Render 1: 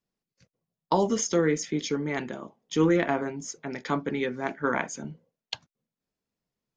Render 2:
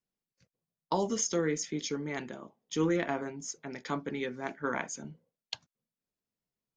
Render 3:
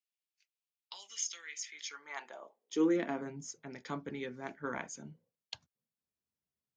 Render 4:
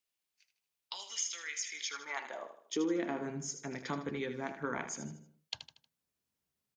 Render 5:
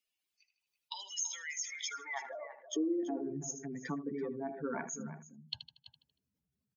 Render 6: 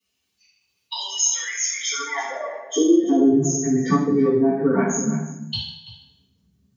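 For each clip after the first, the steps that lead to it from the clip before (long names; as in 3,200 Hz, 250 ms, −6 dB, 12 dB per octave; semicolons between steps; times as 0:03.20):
dynamic equaliser 6,600 Hz, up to +5 dB, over −49 dBFS, Q 0.72; level −6.5 dB
high-pass filter sweep 2,600 Hz → 70 Hz, 0:01.55–0:03.75; level −6 dB
downward compressor 2.5 to 1, threshold −40 dBFS, peak gain reduction 10.5 dB; on a send: repeating echo 78 ms, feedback 42%, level −10 dB; on the sum: level +5.5 dB
expanding power law on the bin magnitudes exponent 2.5; slap from a distant wall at 57 metres, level −12 dB
convolution reverb RT60 0.70 s, pre-delay 3 ms, DRR −13 dB; level −4.5 dB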